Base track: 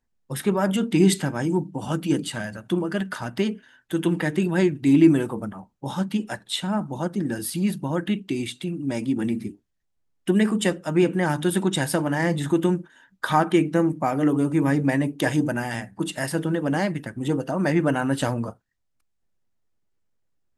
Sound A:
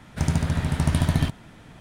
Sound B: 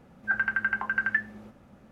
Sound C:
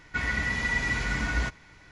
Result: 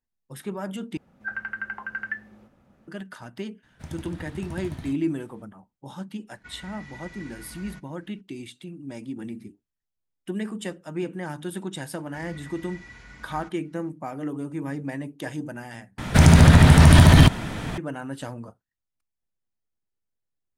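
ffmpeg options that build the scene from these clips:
-filter_complex "[1:a]asplit=2[a][b];[3:a]asplit=2[c][d];[0:a]volume=-10.5dB[e];[b]alimiter=level_in=17.5dB:limit=-1dB:release=50:level=0:latency=1[f];[e]asplit=3[g][h][i];[g]atrim=end=0.974[j];[2:a]atrim=end=1.91,asetpts=PTS-STARTPTS,volume=-5.5dB[k];[h]atrim=start=2.876:end=15.984[l];[f]atrim=end=1.8,asetpts=PTS-STARTPTS,volume=-1.5dB[m];[i]atrim=start=17.776[n];[a]atrim=end=1.8,asetpts=PTS-STARTPTS,volume=-15.5dB,afade=t=in:d=0.004:c=hsin,afade=t=out:st=1.796:d=0.004:c=hsin,adelay=3630[o];[c]atrim=end=1.91,asetpts=PTS-STARTPTS,volume=-17dB,afade=t=in:d=0.004:c=hsin,afade=t=out:st=1.906:d=0.004:c=hsin,adelay=6300[p];[d]atrim=end=1.91,asetpts=PTS-STARTPTS,volume=-18dB,afade=t=in:d=0.004:c=hsin,afade=t=out:st=1.906:d=0.004:c=hsin,adelay=11990[q];[j][k]acrossfade=d=0.004:c1=hsin:c2=hsin[r];[r][l]acrossfade=d=0.004:c1=hsin:c2=hsin[s];[s][m]acrossfade=d=0.004:c1=hsin:c2=hsin[t];[t][n]acrossfade=d=0.004:c1=hsin:c2=hsin[u];[u][o][p][q]amix=inputs=4:normalize=0"

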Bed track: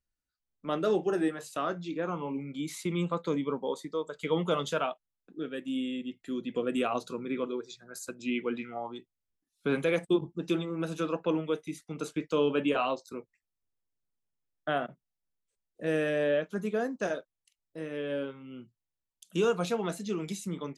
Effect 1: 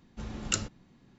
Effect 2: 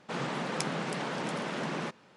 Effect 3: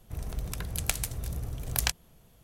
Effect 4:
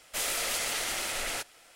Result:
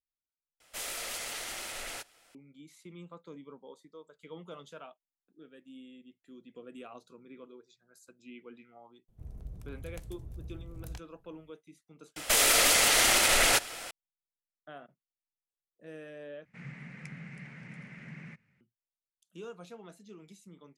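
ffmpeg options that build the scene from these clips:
-filter_complex "[4:a]asplit=2[a][b];[0:a]volume=-17.5dB[c];[3:a]tiltshelf=f=700:g=8.5[d];[b]alimiter=level_in=28dB:limit=-1dB:release=50:level=0:latency=1[e];[2:a]firequalizer=gain_entry='entry(130,0);entry(320,-22);entry(1000,-25);entry(2100,-2);entry(3300,-24);entry(6000,-20)':delay=0.05:min_phase=1[f];[c]asplit=3[g][h][i];[g]atrim=end=0.604[j];[a]atrim=end=1.75,asetpts=PTS-STARTPTS,volume=-7dB[k];[h]atrim=start=2.346:end=16.454[l];[f]atrim=end=2.16,asetpts=PTS-STARTPTS,volume=-2dB[m];[i]atrim=start=18.606[n];[d]atrim=end=2.43,asetpts=PTS-STARTPTS,volume=-17dB,afade=t=in:d=0.004:c=hsin,afade=t=out:st=2.426:d=0.004:c=hsin,adelay=9080[o];[e]atrim=end=1.75,asetpts=PTS-STARTPTS,volume=-13dB,afade=t=in:d=0.004:c=hsin,afade=t=out:st=1.746:d=0.004:c=hsin,adelay=12160[p];[j][k]acrossfade=d=0.004:c1=hsin:c2=hsin[q];[q][l]acrossfade=d=0.004:c1=hsin:c2=hsin[r];[r][m]acrossfade=d=0.004:c1=hsin:c2=hsin[s];[s][n]acrossfade=d=0.004:c1=hsin:c2=hsin[t];[t][o][p]amix=inputs=3:normalize=0"

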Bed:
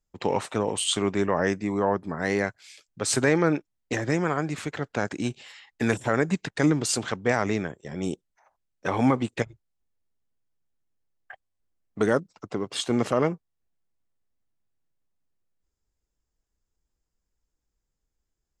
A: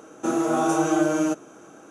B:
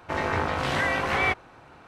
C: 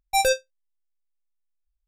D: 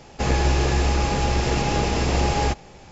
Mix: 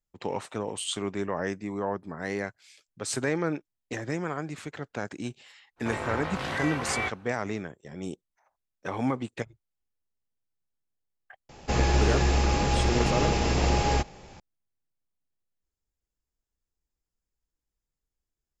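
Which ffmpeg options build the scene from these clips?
-filter_complex "[0:a]volume=-6.5dB[a];[2:a]atrim=end=1.87,asetpts=PTS-STARTPTS,volume=-6.5dB,afade=t=in:d=0.05,afade=t=out:st=1.82:d=0.05,adelay=5760[b];[4:a]atrim=end=2.91,asetpts=PTS-STARTPTS,volume=-3dB,afade=t=in:d=0.004:c=hsin,afade=t=out:st=2.906:d=0.004:c=hsin,adelay=11490[c];[a][b][c]amix=inputs=3:normalize=0"

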